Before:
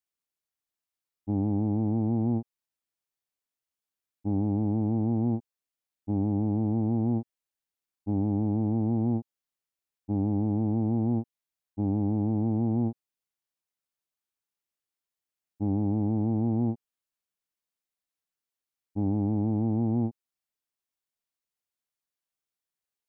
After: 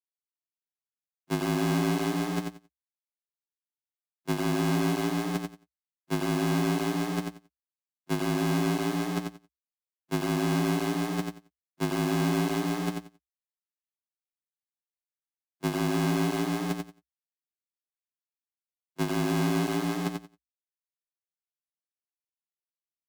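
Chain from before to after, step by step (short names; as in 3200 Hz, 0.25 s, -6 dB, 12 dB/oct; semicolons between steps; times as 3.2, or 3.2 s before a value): half-waves squared off; gate -24 dBFS, range -34 dB; negative-ratio compressor -27 dBFS, ratio -0.5; frequency shift +61 Hz; added harmonics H 7 -29 dB, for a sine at -15 dBFS; feedback echo 90 ms, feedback 18%, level -5 dB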